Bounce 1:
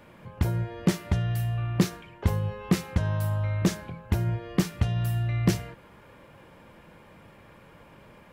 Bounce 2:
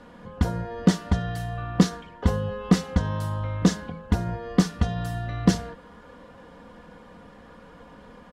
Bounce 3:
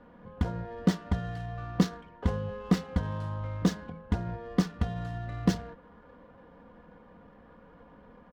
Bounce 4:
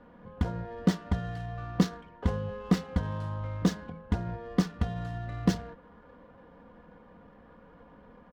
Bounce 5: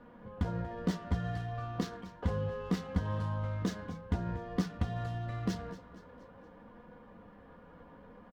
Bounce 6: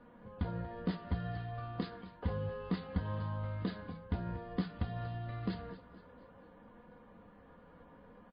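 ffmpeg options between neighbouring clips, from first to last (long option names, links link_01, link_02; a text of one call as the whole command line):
ffmpeg -i in.wav -af "lowpass=7200,equalizer=frequency=2400:width_type=o:width=0.36:gain=-10.5,aecho=1:1:4.1:0.68,volume=3.5dB" out.wav
ffmpeg -i in.wav -af "adynamicsmooth=sensitivity=7.5:basefreq=2000,volume=-6dB" out.wav
ffmpeg -i in.wav -af anull out.wav
ffmpeg -i in.wav -af "alimiter=limit=-19.5dB:level=0:latency=1:release=150,aecho=1:1:235|470|705|940:0.158|0.0777|0.0381|0.0186,flanger=delay=8.2:depth=3.9:regen=-43:speed=0.58:shape=sinusoidal,volume=3.5dB" out.wav
ffmpeg -i in.wav -af "volume=-3dB" -ar 11025 -c:a libmp3lame -b:a 24k out.mp3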